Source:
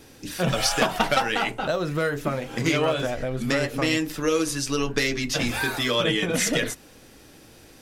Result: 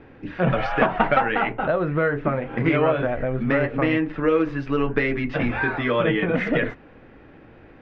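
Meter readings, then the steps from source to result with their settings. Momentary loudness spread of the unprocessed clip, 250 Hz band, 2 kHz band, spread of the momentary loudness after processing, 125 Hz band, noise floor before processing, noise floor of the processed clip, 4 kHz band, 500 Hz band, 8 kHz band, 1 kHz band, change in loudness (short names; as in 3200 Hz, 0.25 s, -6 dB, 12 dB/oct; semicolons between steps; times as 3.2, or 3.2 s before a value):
6 LU, +3.5 dB, +2.0 dB, 5 LU, +3.5 dB, -50 dBFS, -48 dBFS, -11.5 dB, +3.5 dB, under -35 dB, +3.5 dB, +2.0 dB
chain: LPF 2200 Hz 24 dB/oct; gain +3.5 dB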